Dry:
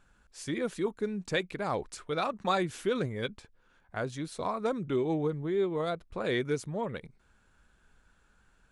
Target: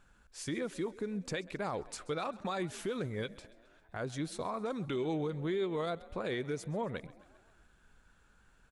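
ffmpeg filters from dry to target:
-filter_complex "[0:a]asettb=1/sr,asplit=3[a][b][c];[a]atrim=end=4.704[d];[b]atrim=start=4.7:end=5.86,asetpts=PTS-STARTPTS,afade=t=in:d=0.004:c=qsin,afade=t=out:st=1.156:d=0.004:c=qsin,equalizer=f=4.2k:t=o:w=2.6:g=8.5[e];[c]atrim=start=5.856[f];[d][e]acrossfade=d=0.004:c1=hsin:c2=qsin[g];[g][f]acrossfade=d=0.004:c1=qsin:c2=hsin,alimiter=level_in=3dB:limit=-24dB:level=0:latency=1:release=185,volume=-3dB,asplit=6[h][i][j][k][l][m];[i]adelay=133,afreqshift=43,volume=-20.5dB[n];[j]adelay=266,afreqshift=86,volume=-24.8dB[o];[k]adelay=399,afreqshift=129,volume=-29.1dB[p];[l]adelay=532,afreqshift=172,volume=-33.4dB[q];[m]adelay=665,afreqshift=215,volume=-37.7dB[r];[h][n][o][p][q][r]amix=inputs=6:normalize=0"

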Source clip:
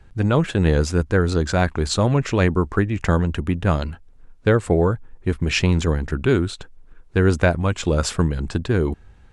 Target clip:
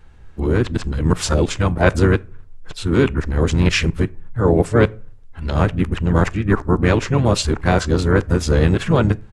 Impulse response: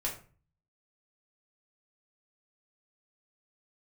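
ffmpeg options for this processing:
-filter_complex "[0:a]areverse,asplit=4[a][b][c][d];[b]asetrate=29433,aresample=44100,atempo=1.49831,volume=-10dB[e];[c]asetrate=37084,aresample=44100,atempo=1.18921,volume=-10dB[f];[d]asetrate=55563,aresample=44100,atempo=0.793701,volume=-14dB[g];[a][e][f][g]amix=inputs=4:normalize=0,asplit=2[h][i];[1:a]atrim=start_sample=2205[j];[i][j]afir=irnorm=-1:irlink=0,volume=-20dB[k];[h][k]amix=inputs=2:normalize=0,volume=1dB"

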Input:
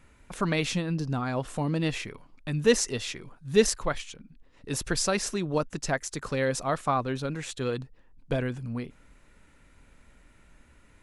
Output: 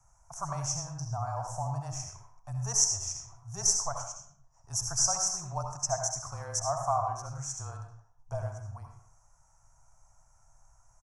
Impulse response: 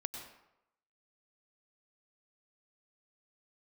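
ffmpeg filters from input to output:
-filter_complex "[0:a]afreqshift=-20,firequalizer=gain_entry='entry(130,0);entry(210,-25);entry(460,-23);entry(680,7);entry(1200,-1);entry(1900,-19);entry(3900,-29);entry(5700,14);entry(9200,-1)':delay=0.05:min_phase=1[a];[1:a]atrim=start_sample=2205,asetrate=61740,aresample=44100[b];[a][b]afir=irnorm=-1:irlink=0"

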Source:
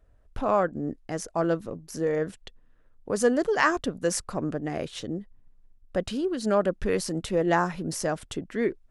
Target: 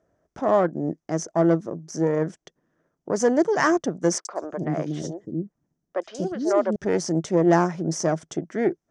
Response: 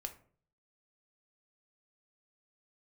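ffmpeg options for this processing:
-filter_complex "[0:a]aeval=exprs='0.447*(cos(1*acos(clip(val(0)/0.447,-1,1)))-cos(1*PI/2))+0.0282*(cos(8*acos(clip(val(0)/0.447,-1,1)))-cos(8*PI/2))':c=same,highpass=160,equalizer=f=160:t=q:w=4:g=9,equalizer=f=340:t=q:w=4:g=8,equalizer=f=650:t=q:w=4:g=6,equalizer=f=2.7k:t=q:w=4:g=-9,equalizer=f=4k:t=q:w=4:g=-9,equalizer=f=6k:t=q:w=4:g=9,lowpass=f=7.6k:w=0.5412,lowpass=f=7.6k:w=1.3066,asettb=1/sr,asplit=3[a][b][c];[a]atrim=end=4.184[d];[b]atrim=start=4.18:end=6.76,asetpts=PTS-STARTPTS,afade=t=in:d=0.004:c=qsin,afade=t=out:st=2.576:d=0.004:c=qsin,acrossover=split=410|4100[e][f][g];[g]adelay=70[h];[e]adelay=240[i];[i][f][h]amix=inputs=3:normalize=0,atrim=end_sample=113778[j];[c]atrim=start=6.756[k];[d][j]acrossfade=d=0.004:c1=hsin:c2=qsin[l];[l][k]acrossfade=d=0.004:c1=qsin:c2=hsin"

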